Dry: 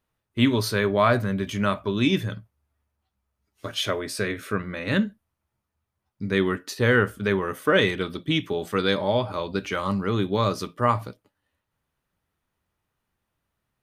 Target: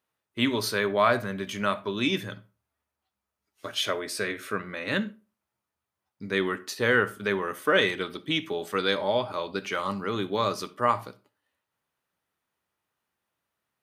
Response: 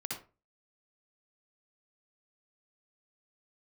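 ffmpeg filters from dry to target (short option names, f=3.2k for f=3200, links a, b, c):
-filter_complex "[0:a]highpass=f=390:p=1,asplit=2[a][b];[1:a]atrim=start_sample=2205[c];[b][c]afir=irnorm=-1:irlink=0,volume=-17.5dB[d];[a][d]amix=inputs=2:normalize=0,volume=-1.5dB"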